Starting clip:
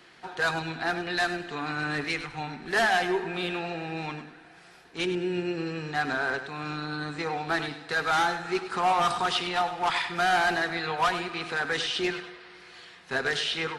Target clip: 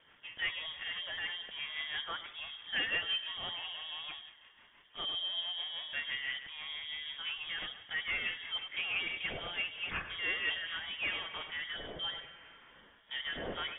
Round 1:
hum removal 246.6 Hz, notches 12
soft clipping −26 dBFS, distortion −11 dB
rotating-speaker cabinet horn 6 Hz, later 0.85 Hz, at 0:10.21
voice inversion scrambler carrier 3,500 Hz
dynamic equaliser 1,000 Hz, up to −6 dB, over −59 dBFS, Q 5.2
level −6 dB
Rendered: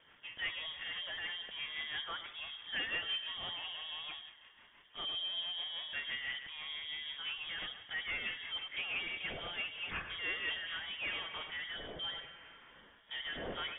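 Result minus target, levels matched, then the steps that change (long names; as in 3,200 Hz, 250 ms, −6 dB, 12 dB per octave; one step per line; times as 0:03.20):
soft clipping: distortion +10 dB
change: soft clipping −18.5 dBFS, distortion −21 dB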